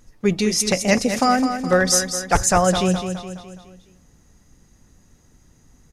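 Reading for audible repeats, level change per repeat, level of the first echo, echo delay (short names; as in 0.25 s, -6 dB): 5, -6.5 dB, -8.5 dB, 0.209 s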